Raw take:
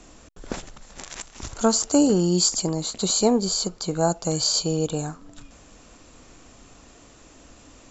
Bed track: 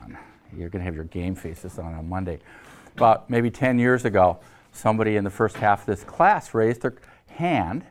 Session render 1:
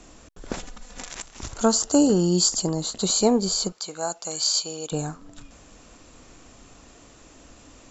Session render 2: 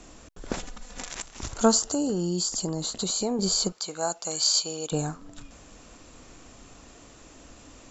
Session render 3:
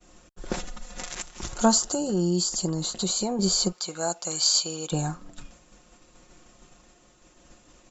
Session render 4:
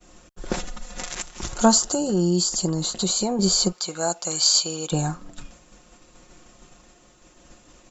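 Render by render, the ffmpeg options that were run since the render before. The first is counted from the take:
-filter_complex "[0:a]asettb=1/sr,asplit=3[s0][s1][s2];[s0]atrim=end=0.594[s3];[s1]atrim=start=0.59:end=1.11,asetpts=PTS-STARTPTS,afade=t=in:d=0.004:c=qsin,afade=t=out:st=0.516:d=0.004:c=qsin,aecho=1:1:4.1:0.65,atrim=end_sample=22932[s4];[s2]atrim=start=1.106[s5];[s3][s4]acrossfade=d=0.004:c1=hsin:c2=qsin[s6];[s6][s5]acrossfade=d=0.004:c1=qsin:c2=hsin,asettb=1/sr,asplit=3[s7][s8][s9];[s7]atrim=end=1.664[s10];[s8]atrim=start=1.66:end=3.03,asetpts=PTS-STARTPTS,afade=t=in:d=0.004:c=qsin,afade=t=out:st=1.366:d=0.004:c=qsin,bandreject=f=2300:w=5.8[s11];[s9]atrim=start=3.026[s12];[s10][s11]acrossfade=d=0.004:c1=hsin:c2=qsin[s13];[s13][s12]acrossfade=d=0.004:c1=qsin:c2=hsin,asettb=1/sr,asplit=3[s14][s15][s16];[s14]atrim=end=3.724[s17];[s15]atrim=start=3.72:end=4.92,asetpts=PTS-STARTPTS,afade=t=in:d=0.004:c=qsin,afade=t=out:st=1.196:d=0.004:c=qsin,highpass=f=1300:p=1[s18];[s16]atrim=start=4.916[s19];[s17][s18]acrossfade=d=0.004:c1=hsin:c2=qsin[s20];[s20][s19]acrossfade=d=0.004:c1=qsin:c2=hsin"
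-filter_complex "[0:a]asettb=1/sr,asplit=3[s0][s1][s2];[s0]atrim=end=1.794[s3];[s1]atrim=start=1.79:end=3.39,asetpts=PTS-STARTPTS,afade=t=in:d=0.004:c=qsin,afade=t=out:st=1.596:d=0.004:c=qsin,acompressor=threshold=0.0501:ratio=3:attack=3.2:release=140:knee=1:detection=peak[s4];[s2]atrim=start=3.386[s5];[s3][s4]acrossfade=d=0.004:c1=hsin:c2=qsin[s6];[s6][s5]acrossfade=d=0.004:c1=qsin:c2=hsin"
-af "agate=range=0.0224:threshold=0.00794:ratio=3:detection=peak,aecho=1:1:5.6:0.56"
-af "volume=1.5"

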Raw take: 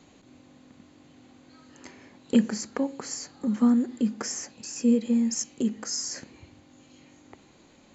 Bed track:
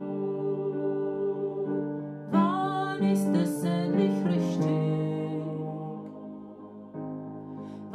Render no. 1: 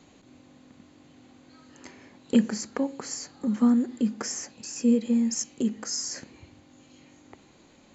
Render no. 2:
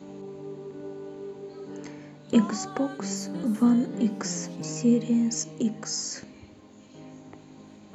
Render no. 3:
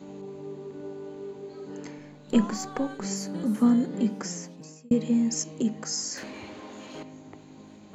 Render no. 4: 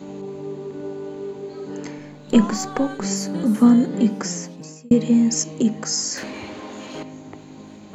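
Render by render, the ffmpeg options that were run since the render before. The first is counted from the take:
-af anull
-filter_complex "[1:a]volume=0.335[s0];[0:a][s0]amix=inputs=2:normalize=0"
-filter_complex "[0:a]asettb=1/sr,asplit=3[s0][s1][s2];[s0]atrim=end=1.984[s3];[s1]atrim=start=1.98:end=3.05,asetpts=PTS-STARTPTS,afade=t=in:d=0.004:c=qsin,afade=t=out:st=1.066:d=0.004:c=qsin,aeval=exprs='if(lt(val(0),0),0.708*val(0),val(0))':c=same[s4];[s2]atrim=start=3.046[s5];[s3][s4]acrossfade=d=0.004:c1=hsin:c2=qsin[s6];[s6][s5]acrossfade=d=0.004:c1=qsin:c2=hsin,asettb=1/sr,asplit=3[s7][s8][s9];[s7]atrim=end=6.174[s10];[s8]atrim=start=6.17:end=7.03,asetpts=PTS-STARTPTS,afade=t=in:d=0.004:c=qsin,afade=t=out:st=0.856:d=0.004:c=qsin,asplit=2[s11][s12];[s12]highpass=f=720:p=1,volume=14.1,asoftclip=type=tanh:threshold=0.0355[s13];[s11][s13]amix=inputs=2:normalize=0,lowpass=f=2800:p=1,volume=0.501[s14];[s9]atrim=start=7.026[s15];[s10][s14]acrossfade=d=0.004:c1=hsin:c2=qsin[s16];[s16][s15]acrossfade=d=0.004:c1=qsin:c2=hsin,asplit=2[s17][s18];[s17]atrim=end=4.91,asetpts=PTS-STARTPTS,afade=t=out:st=3.99:d=0.92[s19];[s18]atrim=start=4.91,asetpts=PTS-STARTPTS,afade=t=in:d=0.004:c=hsin[s20];[s19][s20]concat=n=2:v=0:a=1"
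-af "volume=2.37,alimiter=limit=0.708:level=0:latency=1"

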